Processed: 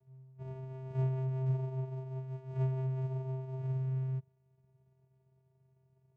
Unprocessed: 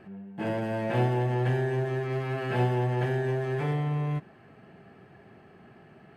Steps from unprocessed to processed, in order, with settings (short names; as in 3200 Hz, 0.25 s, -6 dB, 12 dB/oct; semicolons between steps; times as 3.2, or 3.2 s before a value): median filter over 25 samples; on a send: reverse echo 40 ms -23.5 dB; on the sum: vocoder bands 4, square 131 Hz; upward expander 1.5:1, over -42 dBFS; gain -5 dB